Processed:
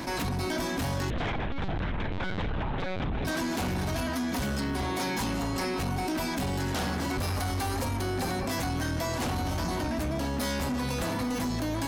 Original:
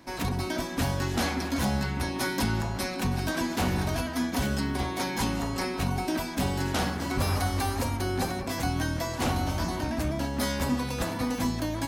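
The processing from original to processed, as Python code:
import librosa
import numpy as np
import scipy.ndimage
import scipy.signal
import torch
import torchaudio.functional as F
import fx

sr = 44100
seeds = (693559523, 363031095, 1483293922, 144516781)

y = fx.lpc_vocoder(x, sr, seeds[0], excitation='pitch_kept', order=10, at=(1.1, 3.25))
y = 10.0 ** (-27.0 / 20.0) * np.tanh(y / 10.0 ** (-27.0 / 20.0))
y = fx.env_flatten(y, sr, amount_pct=70)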